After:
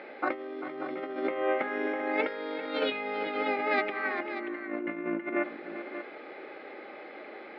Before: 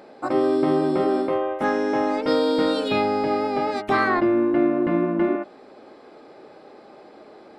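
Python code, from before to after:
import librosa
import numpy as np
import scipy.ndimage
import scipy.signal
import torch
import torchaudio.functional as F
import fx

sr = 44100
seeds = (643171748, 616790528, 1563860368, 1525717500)

y = fx.over_compress(x, sr, threshold_db=-26.0, ratio=-0.5)
y = fx.cabinet(y, sr, low_hz=410.0, low_slope=12, high_hz=3200.0, hz=(450.0, 690.0, 1000.0, 2100.0), db=(-4, -7, -9, 9))
y = fx.echo_multitap(y, sr, ms=(392, 585), db=(-12.0, -11.0))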